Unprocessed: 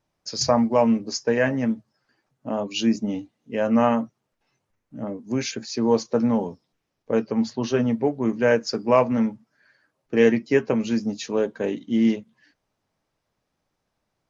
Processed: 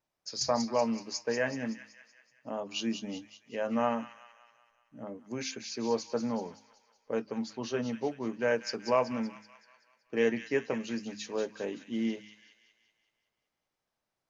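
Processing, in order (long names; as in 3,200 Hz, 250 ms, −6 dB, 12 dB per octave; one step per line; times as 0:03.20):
low-shelf EQ 310 Hz −7.5 dB
hum removal 52.72 Hz, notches 6
on a send: delay with a high-pass on its return 189 ms, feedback 53%, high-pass 1,900 Hz, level −7.5 dB
on the sum: level −7.5 dB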